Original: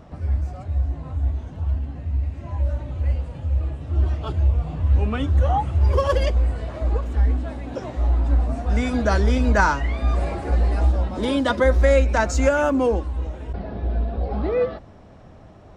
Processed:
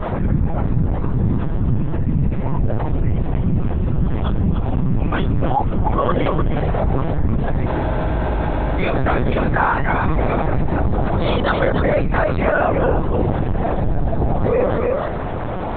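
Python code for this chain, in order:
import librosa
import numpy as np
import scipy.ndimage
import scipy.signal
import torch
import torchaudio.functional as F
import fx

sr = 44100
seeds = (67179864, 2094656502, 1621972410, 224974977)

y = fx.peak_eq(x, sr, hz=270.0, db=-11.0, octaves=1.4)
y = fx.notch(y, sr, hz=2800.0, q=29.0)
y = fx.whisperise(y, sr, seeds[0])
y = fx.rider(y, sr, range_db=5, speed_s=0.5)
y = scipy.signal.sosfilt(scipy.signal.butter(2, 120.0, 'highpass', fs=sr, output='sos'), y)
y = y + 10.0 ** (-7.5 / 20.0) * np.pad(y, (int(297 * sr / 1000.0), 0))[:len(y)]
y = fx.lpc_vocoder(y, sr, seeds[1], excitation='pitch_kept', order=10)
y = fx.high_shelf(y, sr, hz=2400.0, db=-10.0)
y = fx.spec_freeze(y, sr, seeds[2], at_s=7.69, hold_s=1.09)
y = fx.env_flatten(y, sr, amount_pct=70)
y = y * 10.0 ** (4.5 / 20.0)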